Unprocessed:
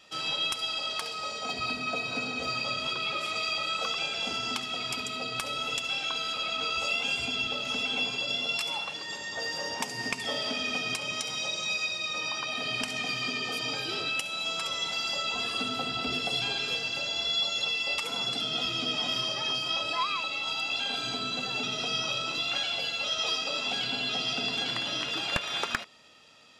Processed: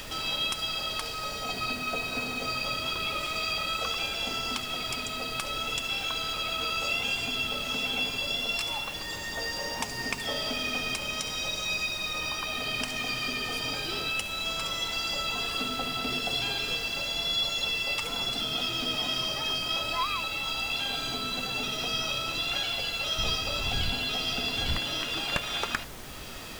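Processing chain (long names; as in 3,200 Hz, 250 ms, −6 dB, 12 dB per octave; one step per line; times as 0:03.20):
0:23.18–0:24.76: wind on the microphone 81 Hz −27 dBFS
upward compression, threshold −33 dBFS
background noise pink −43 dBFS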